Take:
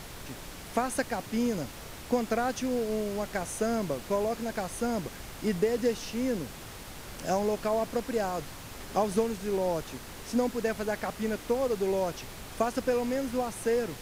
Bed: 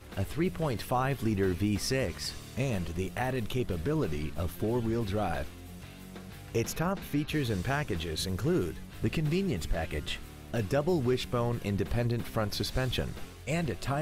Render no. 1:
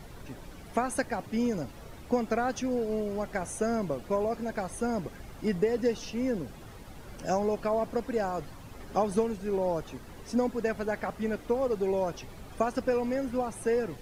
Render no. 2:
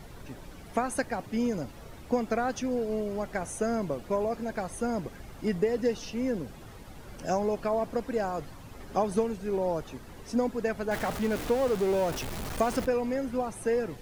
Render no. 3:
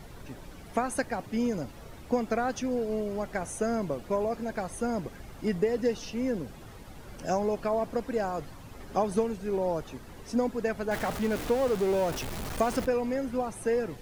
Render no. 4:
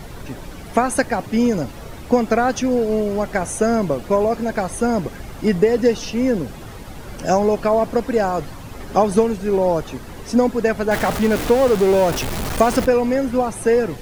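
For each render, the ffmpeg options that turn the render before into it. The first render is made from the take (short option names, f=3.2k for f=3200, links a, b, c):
-af "afftdn=nr=11:nf=-44"
-filter_complex "[0:a]asettb=1/sr,asplit=3[a][b][c];[a]atrim=end=10.914[d];[b]atrim=start=10.91:end=12.86,asetpts=PTS-STARTPTS,afade=t=in:d=0.004:c=qsin,afade=t=out:st=1.946:d=0.004:c=qsin,aeval=exprs='val(0)+0.5*0.0251*sgn(val(0))':c=same[e];[c]atrim=start=12.856[f];[d][e]acrossfade=d=0.004:c1=hsin:c2=qsin[g];[g][f]acrossfade=d=0.004:c1=qsin:c2=hsin"
-af anull
-af "volume=11.5dB"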